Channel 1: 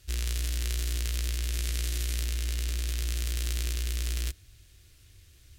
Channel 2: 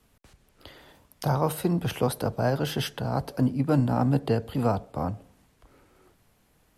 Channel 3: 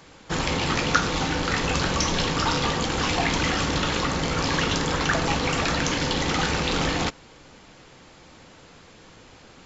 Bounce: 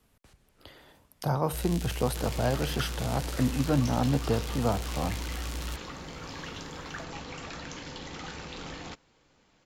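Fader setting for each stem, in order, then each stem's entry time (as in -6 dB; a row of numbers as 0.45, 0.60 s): -5.5, -3.0, -16.5 dB; 1.45, 0.00, 1.85 s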